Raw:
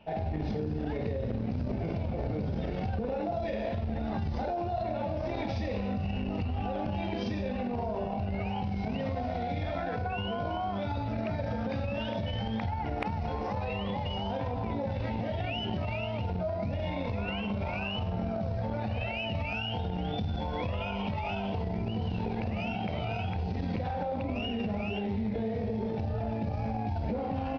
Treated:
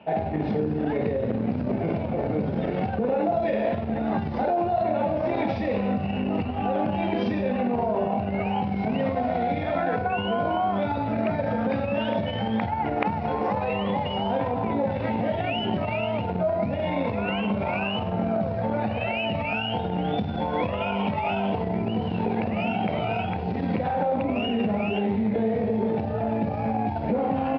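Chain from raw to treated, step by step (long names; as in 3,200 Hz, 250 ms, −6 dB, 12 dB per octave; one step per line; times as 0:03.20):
band-pass filter 160–2,600 Hz
level +9 dB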